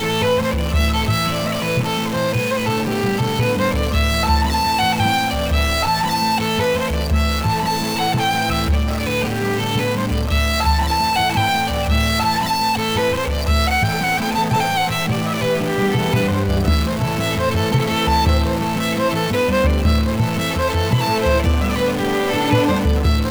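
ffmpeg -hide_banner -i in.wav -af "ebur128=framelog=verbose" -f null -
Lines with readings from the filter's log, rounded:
Integrated loudness:
  I:         -18.2 LUFS
  Threshold: -28.2 LUFS
Loudness range:
  LRA:         1.4 LU
  Threshold: -38.2 LUFS
  LRA low:   -19.0 LUFS
  LRA high:  -17.6 LUFS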